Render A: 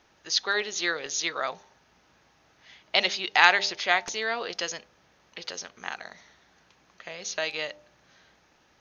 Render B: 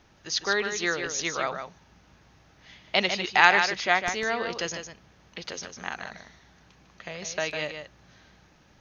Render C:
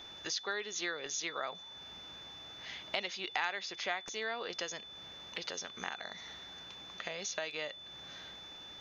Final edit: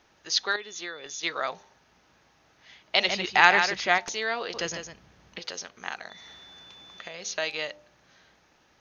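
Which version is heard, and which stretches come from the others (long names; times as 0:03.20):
A
0:00.56–0:01.23: punch in from C
0:03.09–0:03.98: punch in from B
0:04.54–0:05.39: punch in from B
0:06.10–0:07.14: punch in from C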